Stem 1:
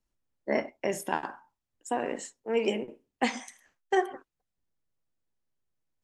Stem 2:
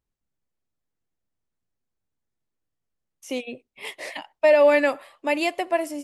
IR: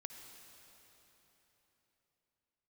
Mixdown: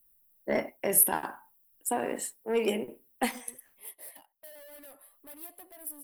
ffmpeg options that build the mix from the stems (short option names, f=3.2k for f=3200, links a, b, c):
-filter_complex "[0:a]asoftclip=type=tanh:threshold=-17dB,volume=0.5dB,asplit=3[a][b][c];[a]atrim=end=3.81,asetpts=PTS-STARTPTS,afade=t=out:st=3.806:d=0.004:c=hsin[d];[b]atrim=start=3.81:end=4.99,asetpts=PTS-STARTPTS,volume=0[e];[c]atrim=start=4.99,asetpts=PTS-STARTPTS,afade=t=in:d=0.004:c=hsin[f];[d][e][f]concat=n=3:v=0:a=1[g];[1:a]acompressor=threshold=-21dB:ratio=4,equalizer=f=2.4k:w=2.1:g=-7,volume=33.5dB,asoftclip=hard,volume=-33.5dB,volume=-17.5dB,asplit=2[h][i];[i]apad=whole_len=266126[j];[g][j]sidechaincompress=threshold=-59dB:ratio=8:attack=9.9:release=423[k];[k][h]amix=inputs=2:normalize=0,aexciter=amount=15.7:drive=9.2:freq=10k"